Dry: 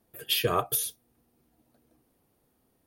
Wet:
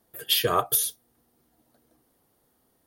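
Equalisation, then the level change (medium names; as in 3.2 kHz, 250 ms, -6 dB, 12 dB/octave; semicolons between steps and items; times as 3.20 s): bass shelf 450 Hz -6.5 dB; peaking EQ 2.5 kHz -7 dB 0.27 oct; +5.0 dB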